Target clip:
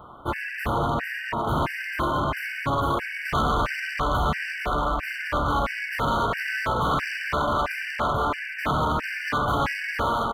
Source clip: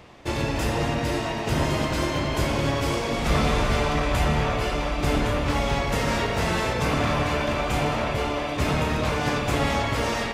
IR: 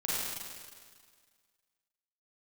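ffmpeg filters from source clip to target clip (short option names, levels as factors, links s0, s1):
-af "firequalizer=gain_entry='entry(510,0);entry(1200,12);entry(5900,-27);entry(8700,-8);entry(14000,4)':delay=0.05:min_phase=1,asoftclip=type=hard:threshold=0.112,afftfilt=real='re*gt(sin(2*PI*1.5*pts/sr)*(1-2*mod(floor(b*sr/1024/1500),2)),0)':imag='im*gt(sin(2*PI*1.5*pts/sr)*(1-2*mod(floor(b*sr/1024/1500),2)),0)':win_size=1024:overlap=0.75"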